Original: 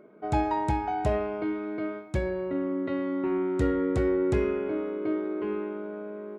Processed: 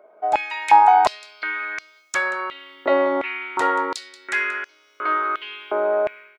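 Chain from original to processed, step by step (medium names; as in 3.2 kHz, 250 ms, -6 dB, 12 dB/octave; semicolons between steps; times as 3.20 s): level rider gain up to 15 dB; delay 181 ms -15 dB; step-sequenced high-pass 2.8 Hz 690–5900 Hz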